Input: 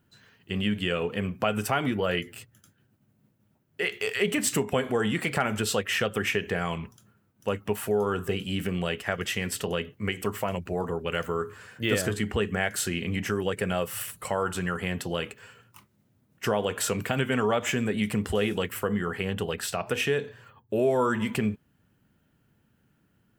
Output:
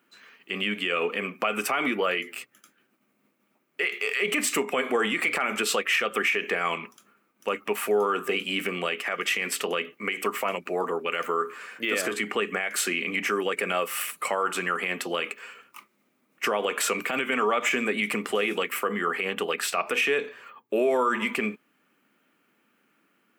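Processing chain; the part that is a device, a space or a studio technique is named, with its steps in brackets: laptop speaker (HPF 250 Hz 24 dB/oct; bell 1200 Hz +10 dB 0.23 oct; bell 2300 Hz +10.5 dB 0.46 oct; limiter -17.5 dBFS, peak gain reduction 10.5 dB); gain +2.5 dB

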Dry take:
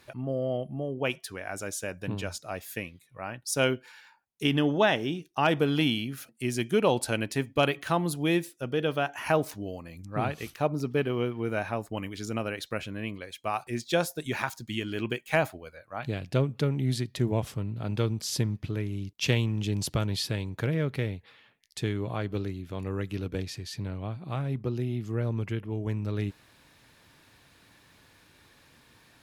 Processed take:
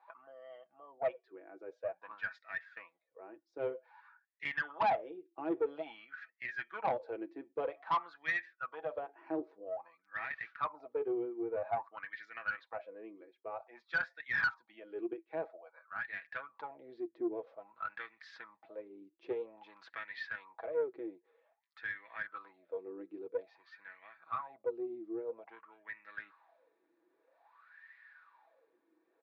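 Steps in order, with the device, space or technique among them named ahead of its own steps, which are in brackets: HPF 690 Hz 12 dB/oct; comb 6.1 ms, depth 57%; wah-wah guitar rig (wah 0.51 Hz 330–1900 Hz, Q 12; tube stage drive 37 dB, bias 0.25; speaker cabinet 93–4000 Hz, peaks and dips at 110 Hz +4 dB, 240 Hz +8 dB, 3000 Hz -8 dB); gain +11.5 dB

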